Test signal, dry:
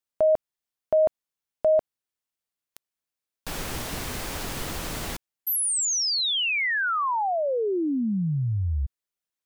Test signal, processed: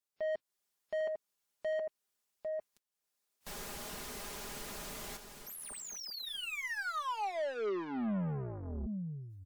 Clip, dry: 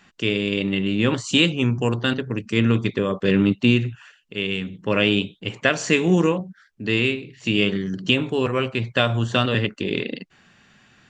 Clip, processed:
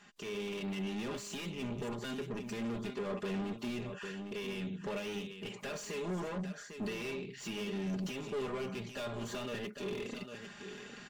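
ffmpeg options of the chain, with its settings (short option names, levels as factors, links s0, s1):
-af "asoftclip=type=hard:threshold=0.158,bass=f=250:g=-6,treble=f=4000:g=12,acompressor=threshold=0.0501:ratio=12:attack=0.13:release=321:knee=6:detection=rms,aecho=1:1:801:0.2,dynaudnorm=f=110:g=5:m=2.82,asoftclip=type=tanh:threshold=0.0266,highshelf=f=3300:g=-12,aecho=1:1:4.9:0.59,volume=0.596" -ar 48000 -c:a wmav2 -b:a 128k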